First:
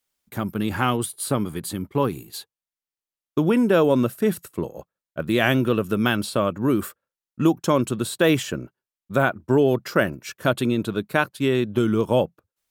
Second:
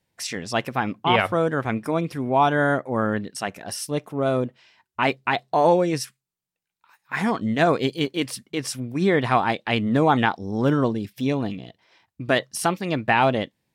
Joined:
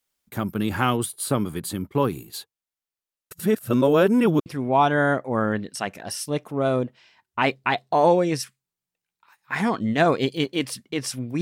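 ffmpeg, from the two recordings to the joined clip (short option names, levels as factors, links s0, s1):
-filter_complex "[0:a]apad=whole_dur=11.41,atrim=end=11.41,asplit=2[s0][s1];[s0]atrim=end=3.312[s2];[s1]atrim=start=3.308:end=4.462,asetpts=PTS-STARTPTS,areverse[s3];[1:a]atrim=start=2.068:end=9.02[s4];[s2][s3]acrossfade=d=0.004:c1=hsin:c2=hsin[s5];[s5][s4]acrossfade=d=0.004:c1=hsin:c2=hsin"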